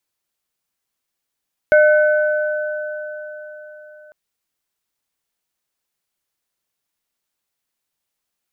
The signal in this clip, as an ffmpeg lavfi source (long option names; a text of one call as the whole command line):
ffmpeg -f lavfi -i "aevalsrc='0.398*pow(10,-3*t/4.18)*sin(2*PI*606*t)+0.211*pow(10,-3*t/4.12)*sin(2*PI*1510*t)+0.0398*pow(10,-3*t/1.29)*sin(2*PI*2170*t)':duration=2.4:sample_rate=44100" out.wav